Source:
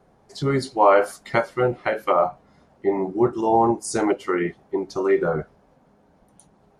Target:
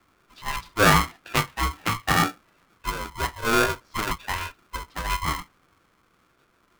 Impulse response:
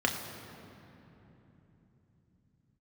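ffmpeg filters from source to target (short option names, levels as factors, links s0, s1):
-af "highpass=f=460:t=q:w=0.5412,highpass=f=460:t=q:w=1.307,lowpass=f=3300:t=q:w=0.5176,lowpass=f=3300:t=q:w=0.7071,lowpass=f=3300:t=q:w=1.932,afreqshift=85,aeval=exprs='val(0)*sgn(sin(2*PI*520*n/s))':c=same,volume=0.841"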